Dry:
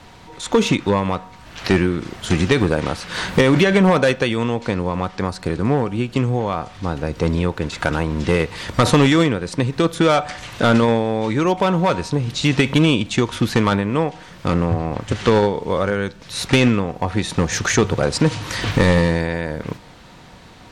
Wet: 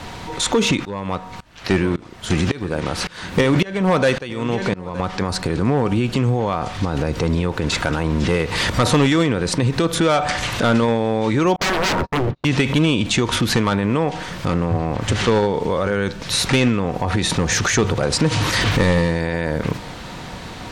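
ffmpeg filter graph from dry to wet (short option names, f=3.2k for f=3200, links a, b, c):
-filter_complex "[0:a]asettb=1/sr,asplit=3[a][b][c];[a]atrim=end=0.854[d];[b]atrim=start=0.85:end=5,asetpts=PTS-STARTPTS,afade=t=in:d=0.004:c=qsin,afade=t=out:st=4.146:d=0.004:c=qsin,aecho=1:1:919:0.178,atrim=end_sample=183015,aeval=exprs='val(0)*pow(10,-25*if(lt(mod(-1.8*n/s,1),2*abs(-1.8)/1000),1-mod(-1.8*n/s,1)/(2*abs(-1.8)/1000),(mod(-1.8*n/s,1)-2*abs(-1.8)/1000)/(1-2*abs(-1.8)/1000))/20)':c=same[e];[c]atrim=start=4.996[f];[d][e]acrossfade=d=0.004:c1=hsin:c2=qsin[g];[g][f]acrossfade=d=0.004:c1=qsin:c2=hsin,asettb=1/sr,asplit=3[h][i][j];[h]atrim=end=11.564[k];[i]atrim=start=11.56:end=12.45,asetpts=PTS-STARTPTS,afade=t=in:d=0.004:c=qsin,afade=t=out:st=0.886:d=0.004:c=qsin,lowpass=1.1k,agate=range=-42dB:threshold=-31dB:ratio=16:release=100:detection=peak,aeval=exprs='0.0596*(abs(mod(val(0)/0.0596+3,4)-2)-1)':c=same[l];[j]atrim=start=12.446[m];[k][l]acrossfade=d=0.004:c1=hsin:c2=qsin[n];[n][m]acrossfade=d=0.004:c1=qsin:c2=hsin,acompressor=threshold=-17dB:ratio=6,alimiter=level_in=19dB:limit=-1dB:release=50:level=0:latency=1,volume=-8.5dB"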